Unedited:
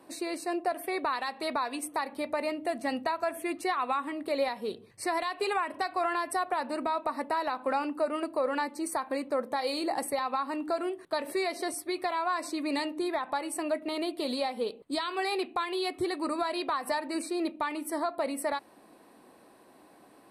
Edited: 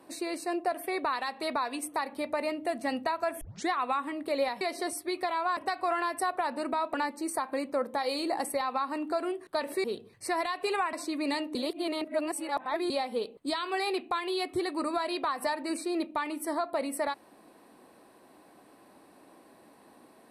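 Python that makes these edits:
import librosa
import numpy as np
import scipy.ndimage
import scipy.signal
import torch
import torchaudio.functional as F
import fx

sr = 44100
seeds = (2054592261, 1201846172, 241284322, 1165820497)

y = fx.edit(x, sr, fx.tape_start(start_s=3.41, length_s=0.28),
    fx.swap(start_s=4.61, length_s=1.09, other_s=11.42, other_length_s=0.96),
    fx.cut(start_s=7.07, length_s=1.45),
    fx.reverse_span(start_s=13.0, length_s=1.35), tone=tone)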